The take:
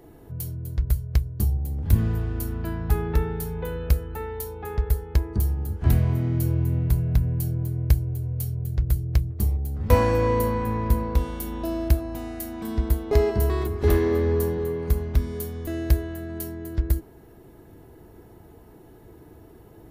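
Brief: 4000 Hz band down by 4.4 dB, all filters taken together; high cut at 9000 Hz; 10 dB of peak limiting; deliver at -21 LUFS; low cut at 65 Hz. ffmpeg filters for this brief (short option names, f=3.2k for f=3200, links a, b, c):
-af "highpass=65,lowpass=9k,equalizer=f=4k:t=o:g=-5.5,volume=7.5dB,alimiter=limit=-8.5dB:level=0:latency=1"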